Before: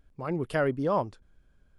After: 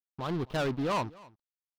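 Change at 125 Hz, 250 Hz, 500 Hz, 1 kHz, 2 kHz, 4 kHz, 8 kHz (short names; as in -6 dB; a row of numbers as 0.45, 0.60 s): -1.0 dB, -2.0 dB, -5.0 dB, -1.5 dB, -3.0 dB, +8.0 dB, n/a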